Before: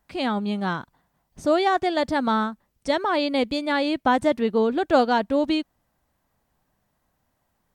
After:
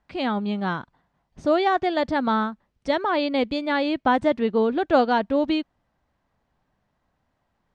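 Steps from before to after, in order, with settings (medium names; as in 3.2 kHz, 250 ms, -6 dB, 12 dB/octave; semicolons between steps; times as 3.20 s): low-pass 4.2 kHz 12 dB/octave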